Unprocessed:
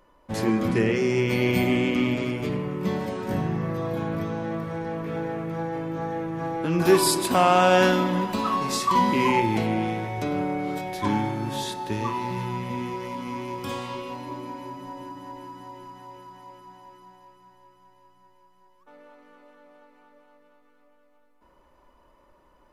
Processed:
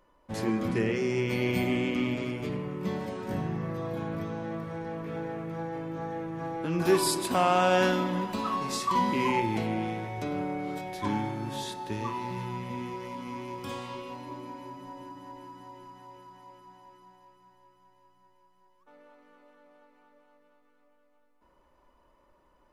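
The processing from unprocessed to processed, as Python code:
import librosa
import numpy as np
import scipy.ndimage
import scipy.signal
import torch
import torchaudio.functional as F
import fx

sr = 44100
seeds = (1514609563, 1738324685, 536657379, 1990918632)

y = fx.peak_eq(x, sr, hz=13000.0, db=-3.0, octaves=0.24)
y = y * librosa.db_to_amplitude(-5.5)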